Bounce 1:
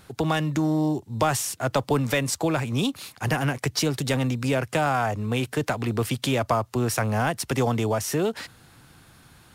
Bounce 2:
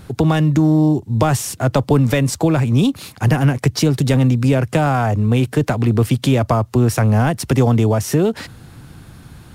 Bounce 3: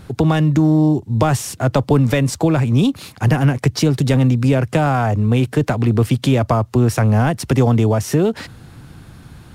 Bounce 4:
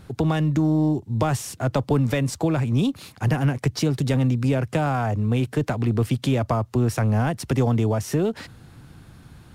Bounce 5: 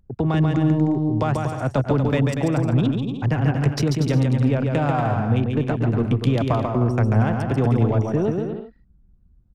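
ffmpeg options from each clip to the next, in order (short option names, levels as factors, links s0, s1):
-filter_complex "[0:a]lowshelf=f=410:g=11.5,asplit=2[s0][s1];[s1]acompressor=threshold=0.0631:ratio=6,volume=0.794[s2];[s0][s2]amix=inputs=2:normalize=0"
-af "highshelf=f=8000:g=-4.5"
-af "aeval=exprs='0.841*(cos(1*acos(clip(val(0)/0.841,-1,1)))-cos(1*PI/2))+0.00841*(cos(6*acos(clip(val(0)/0.841,-1,1)))-cos(6*PI/2))':c=same,volume=0.473"
-af "anlmdn=100,aecho=1:1:140|238|306.6|354.6|388.2:0.631|0.398|0.251|0.158|0.1"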